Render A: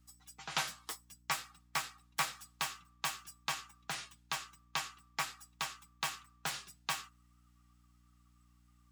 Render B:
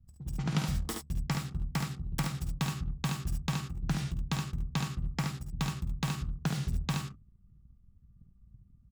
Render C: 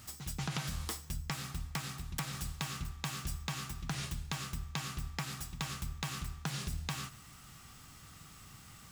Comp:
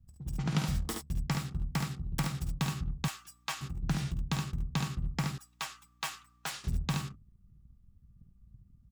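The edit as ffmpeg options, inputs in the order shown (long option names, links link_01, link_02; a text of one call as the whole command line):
ffmpeg -i take0.wav -i take1.wav -filter_complex "[0:a]asplit=2[link_01][link_02];[1:a]asplit=3[link_03][link_04][link_05];[link_03]atrim=end=3.082[link_06];[link_01]atrim=start=3.078:end=3.612[link_07];[link_04]atrim=start=3.608:end=5.382[link_08];[link_02]atrim=start=5.378:end=6.642[link_09];[link_05]atrim=start=6.638[link_10];[link_06][link_07]acrossfade=duration=0.004:curve1=hsin:curve2=hsin[link_11];[link_11][link_08]acrossfade=duration=0.004:curve1=hsin:curve2=hsin[link_12];[link_12][link_09]acrossfade=duration=0.004:curve1=hsin:curve2=hsin[link_13];[link_13][link_10]acrossfade=duration=0.004:curve1=hsin:curve2=hsin" out.wav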